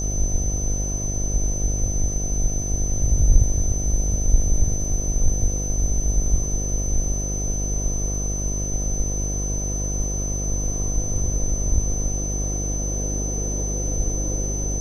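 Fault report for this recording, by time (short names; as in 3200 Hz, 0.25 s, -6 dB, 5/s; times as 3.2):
buzz 50 Hz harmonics 15 -26 dBFS
tone 6100 Hz -28 dBFS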